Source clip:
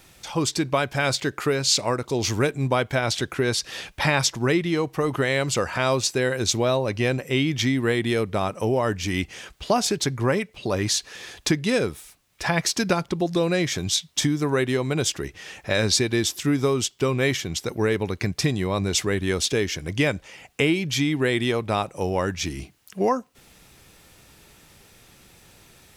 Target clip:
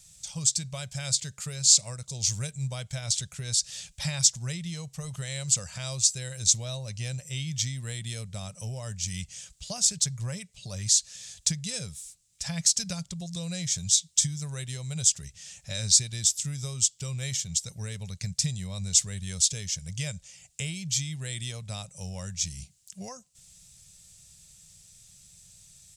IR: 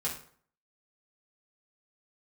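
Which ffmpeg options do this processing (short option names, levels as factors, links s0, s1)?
-af "firequalizer=gain_entry='entry(170,0);entry(290,-29);entry(570,-12);entry(920,-18);entry(3700,0);entry(7600,14);entry(13000,-6)':delay=0.05:min_phase=1,volume=0.531"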